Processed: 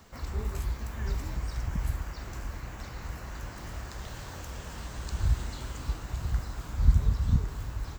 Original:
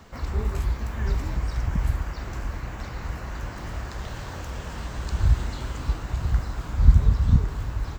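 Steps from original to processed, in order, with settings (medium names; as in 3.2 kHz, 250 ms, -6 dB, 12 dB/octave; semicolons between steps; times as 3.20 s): treble shelf 5.7 kHz +9.5 dB; trim -6.5 dB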